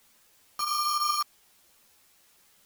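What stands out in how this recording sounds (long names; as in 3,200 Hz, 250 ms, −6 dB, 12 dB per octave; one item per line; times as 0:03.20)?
a buzz of ramps at a fixed pitch in blocks of 8 samples
chopped level 3 Hz, depth 60%, duty 90%
a quantiser's noise floor 10 bits, dither triangular
a shimmering, thickened sound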